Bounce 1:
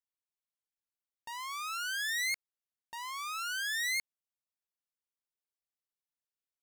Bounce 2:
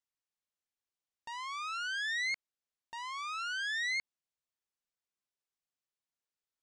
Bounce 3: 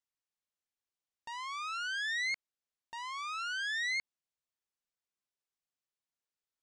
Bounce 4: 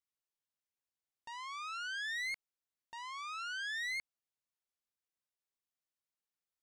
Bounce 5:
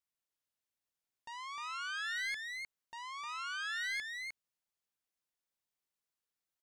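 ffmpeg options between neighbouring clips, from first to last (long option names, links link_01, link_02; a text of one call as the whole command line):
ffmpeg -i in.wav -filter_complex "[0:a]lowpass=frequency=8400:width=0.5412,lowpass=frequency=8400:width=1.3066,acrossover=split=4800[link_01][link_02];[link_02]acompressor=threshold=-54dB:ratio=4:attack=1:release=60[link_03];[link_01][link_03]amix=inputs=2:normalize=0" out.wav
ffmpeg -i in.wav -af anull out.wav
ffmpeg -i in.wav -af "asoftclip=type=hard:threshold=-31dB,volume=-4dB" out.wav
ffmpeg -i in.wav -af "aecho=1:1:306:0.596" out.wav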